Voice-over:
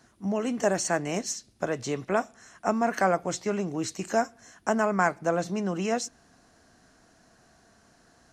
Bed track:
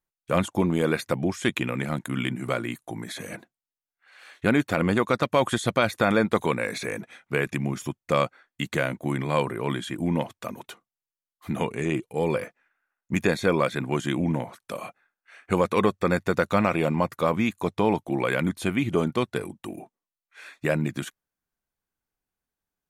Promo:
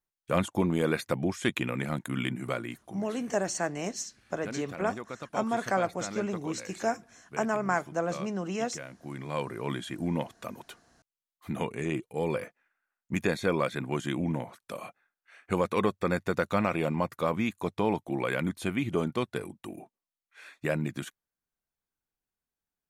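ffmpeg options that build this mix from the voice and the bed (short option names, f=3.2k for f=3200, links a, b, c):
-filter_complex "[0:a]adelay=2700,volume=-4dB[a];[1:a]volume=8.5dB,afade=t=out:st=2.34:d=0.83:silence=0.211349,afade=t=in:st=8.95:d=0.78:silence=0.251189[b];[a][b]amix=inputs=2:normalize=0"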